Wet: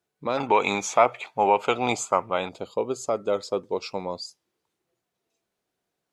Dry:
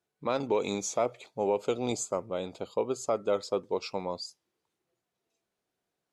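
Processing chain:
0:00.37–0:02.49: flat-topped bell 1,500 Hz +12.5 dB 2.4 octaves
level +3 dB

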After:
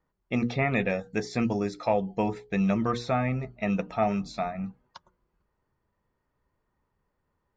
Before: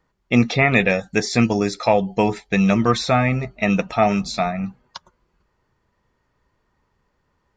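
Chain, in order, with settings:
high-shelf EQ 2,100 Hz −9 dB
mains-hum notches 60/120/180/240/300/360/420/480 Hz
level −7.5 dB

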